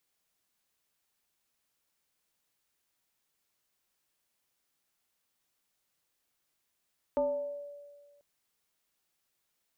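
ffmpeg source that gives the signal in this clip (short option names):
-f lavfi -i "aevalsrc='0.0631*pow(10,-3*t/1.66)*sin(2*PI*576*t+0.7*pow(10,-3*t/1.01)*sin(2*PI*0.54*576*t))':d=1.04:s=44100"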